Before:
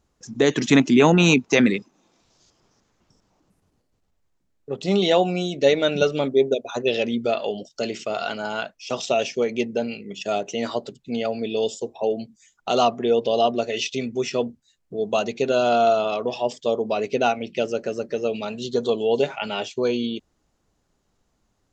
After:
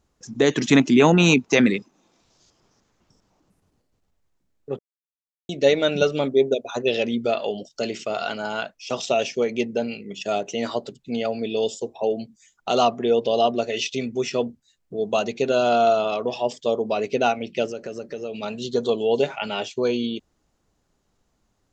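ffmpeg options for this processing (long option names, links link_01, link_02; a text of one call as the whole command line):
ffmpeg -i in.wav -filter_complex "[0:a]asettb=1/sr,asplit=3[link_01][link_02][link_03];[link_01]atrim=end=17.694[link_04];[link_02]atrim=start=17.69:end=18.43,asetpts=PTS-STARTPTS,afade=type=in:duration=0.004:curve=qsin,afade=type=out:start_time=0.736:duration=0.004:curve=qsin,acompressor=threshold=-30dB:ratio=2.5:attack=3.2:release=140:knee=1:detection=peak[link_05];[link_03]atrim=start=18.426[link_06];[link_04][link_05]acrossfade=duration=0.004:curve1=hsin:curve2=qsin[link_07];[link_07][link_06]acrossfade=duration=0.004:curve1=qsin:curve2=hsin,asplit=3[link_08][link_09][link_10];[link_08]atrim=end=4.79,asetpts=PTS-STARTPTS,afade=type=out:start_time=4.786:duration=0.004:curve=hsin[link_11];[link_09]atrim=start=4.79:end=5.49,asetpts=PTS-STARTPTS,volume=0[link_12];[link_10]atrim=start=5.49,asetpts=PTS-STARTPTS,afade=type=in:duration=0.004:curve=hsin[link_13];[link_11][link_12][link_13]concat=n=3:v=0:a=1" out.wav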